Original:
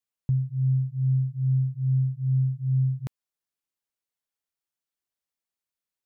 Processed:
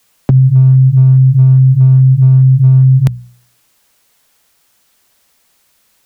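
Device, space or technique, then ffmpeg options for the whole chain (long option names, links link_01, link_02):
mastering chain: -filter_complex "[0:a]equalizer=frequency=350:width_type=o:width=0.44:gain=-3,acrossover=split=83|220[link_01][link_02][link_03];[link_01]acompressor=threshold=-42dB:ratio=4[link_04];[link_02]acompressor=threshold=-34dB:ratio=4[link_05];[link_03]acompressor=threshold=-49dB:ratio=4[link_06];[link_04][link_05][link_06]amix=inputs=3:normalize=0,acompressor=threshold=-32dB:ratio=3,asoftclip=type=hard:threshold=-30dB,alimiter=level_in=36dB:limit=-1dB:release=50:level=0:latency=1,bandreject=frequency=60.9:width_type=h:width=4,bandreject=frequency=121.8:width_type=h:width=4,bandreject=frequency=182.7:width_type=h:width=4,volume=-1.5dB"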